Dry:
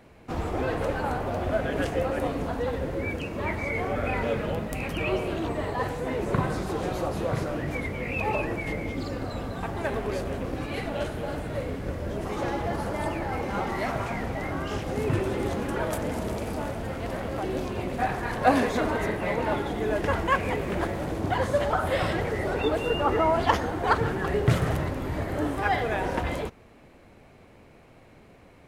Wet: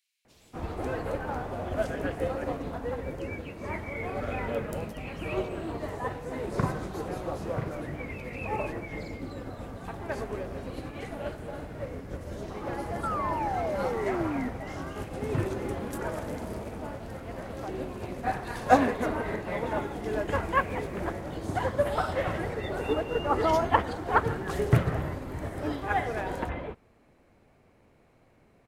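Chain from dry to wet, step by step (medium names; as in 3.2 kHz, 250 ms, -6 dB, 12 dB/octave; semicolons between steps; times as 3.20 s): bands offset in time highs, lows 250 ms, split 3.1 kHz; painted sound fall, 13.03–14.49 s, 240–1400 Hz -28 dBFS; upward expansion 1.5:1, over -36 dBFS; trim +1.5 dB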